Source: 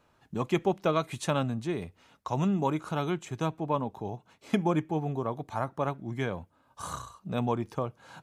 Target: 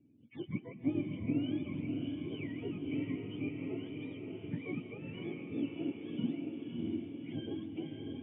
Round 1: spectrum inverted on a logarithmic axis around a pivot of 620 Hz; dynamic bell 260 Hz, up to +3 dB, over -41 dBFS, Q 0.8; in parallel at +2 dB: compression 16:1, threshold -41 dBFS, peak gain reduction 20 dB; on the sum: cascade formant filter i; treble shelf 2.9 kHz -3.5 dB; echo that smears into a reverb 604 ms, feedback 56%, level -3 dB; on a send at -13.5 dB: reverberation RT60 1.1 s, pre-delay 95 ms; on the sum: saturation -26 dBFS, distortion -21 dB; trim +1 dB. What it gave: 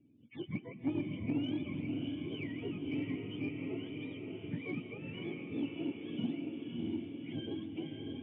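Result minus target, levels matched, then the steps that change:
saturation: distortion +18 dB; 4 kHz band +3.5 dB
change: treble shelf 2.9 kHz -10.5 dB; change: saturation -15.5 dBFS, distortion -39 dB

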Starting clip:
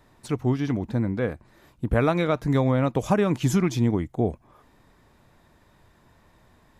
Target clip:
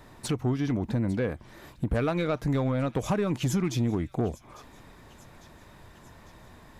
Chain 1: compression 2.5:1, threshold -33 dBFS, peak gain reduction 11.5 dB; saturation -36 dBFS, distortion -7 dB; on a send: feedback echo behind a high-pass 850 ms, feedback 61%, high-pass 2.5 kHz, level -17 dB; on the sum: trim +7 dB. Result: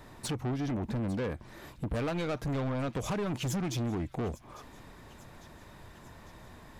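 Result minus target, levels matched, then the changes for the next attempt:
saturation: distortion +10 dB
change: saturation -25.5 dBFS, distortion -17 dB

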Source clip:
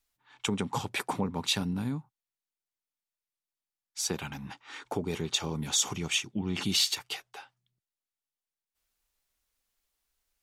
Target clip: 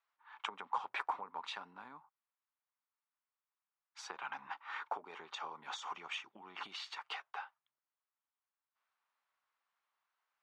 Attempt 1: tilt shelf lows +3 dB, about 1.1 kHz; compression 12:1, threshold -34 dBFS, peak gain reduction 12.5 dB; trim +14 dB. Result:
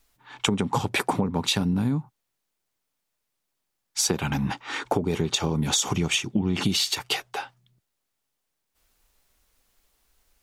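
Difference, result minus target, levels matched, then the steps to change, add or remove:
1 kHz band -8.5 dB
add after compression: ladder band-pass 1.3 kHz, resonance 40%

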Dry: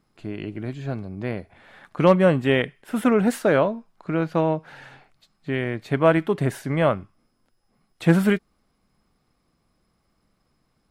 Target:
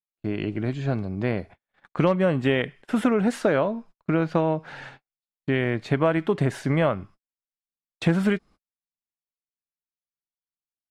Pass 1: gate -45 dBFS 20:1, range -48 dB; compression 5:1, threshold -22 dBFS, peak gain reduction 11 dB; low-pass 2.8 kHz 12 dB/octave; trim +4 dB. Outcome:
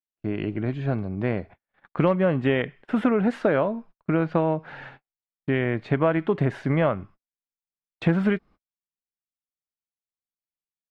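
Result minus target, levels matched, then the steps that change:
8 kHz band -15.0 dB
change: low-pass 7.6 kHz 12 dB/octave

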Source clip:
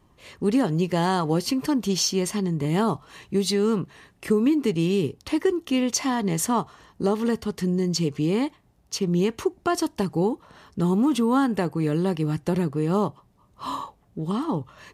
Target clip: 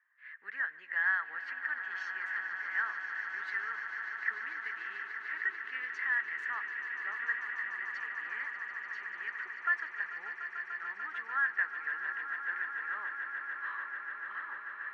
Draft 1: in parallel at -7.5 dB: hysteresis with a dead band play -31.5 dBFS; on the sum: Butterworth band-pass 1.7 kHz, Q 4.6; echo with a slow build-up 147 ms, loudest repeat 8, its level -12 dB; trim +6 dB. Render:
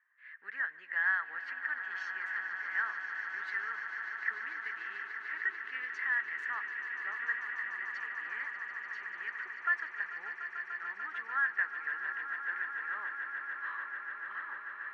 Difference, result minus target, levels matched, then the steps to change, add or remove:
hysteresis with a dead band: distortion +9 dB
change: hysteresis with a dead band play -41.5 dBFS

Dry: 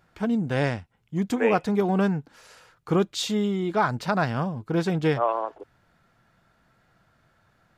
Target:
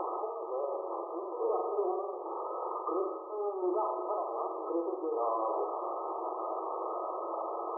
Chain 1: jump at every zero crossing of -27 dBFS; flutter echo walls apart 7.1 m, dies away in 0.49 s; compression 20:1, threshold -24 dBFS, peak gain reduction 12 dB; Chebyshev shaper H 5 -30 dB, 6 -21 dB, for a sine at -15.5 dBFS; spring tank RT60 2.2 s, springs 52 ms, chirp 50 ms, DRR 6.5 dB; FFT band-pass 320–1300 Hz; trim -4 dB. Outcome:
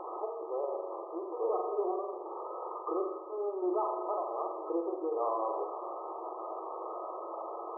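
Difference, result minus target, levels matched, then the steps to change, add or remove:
jump at every zero crossing: distortion -6 dB
change: jump at every zero crossing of -17.5 dBFS

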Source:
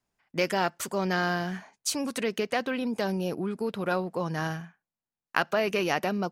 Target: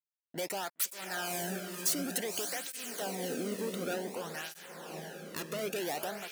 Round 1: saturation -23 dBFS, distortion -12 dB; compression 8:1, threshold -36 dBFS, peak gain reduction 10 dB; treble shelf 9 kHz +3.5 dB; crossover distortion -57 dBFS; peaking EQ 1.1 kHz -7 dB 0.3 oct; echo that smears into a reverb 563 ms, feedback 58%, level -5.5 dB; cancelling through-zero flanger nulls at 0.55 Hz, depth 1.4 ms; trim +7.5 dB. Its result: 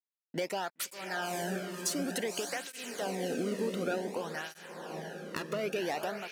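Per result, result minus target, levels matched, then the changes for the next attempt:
crossover distortion: distortion -10 dB; saturation: distortion -7 dB; 8 kHz band -3.5 dB
change: crossover distortion -45.5 dBFS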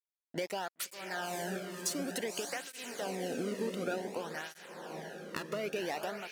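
saturation: distortion -7 dB; 8 kHz band -3.0 dB
change: saturation -33.5 dBFS, distortion -5 dB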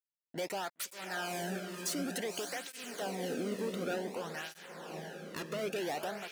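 8 kHz band -3.5 dB
change: treble shelf 9 kHz +15 dB

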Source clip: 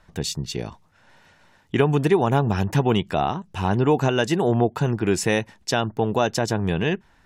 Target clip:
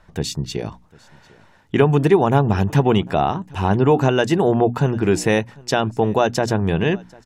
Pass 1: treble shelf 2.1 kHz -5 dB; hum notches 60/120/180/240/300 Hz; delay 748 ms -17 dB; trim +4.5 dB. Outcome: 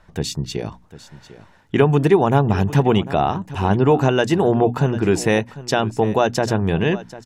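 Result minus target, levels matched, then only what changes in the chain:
echo-to-direct +8.5 dB
change: delay 748 ms -25.5 dB

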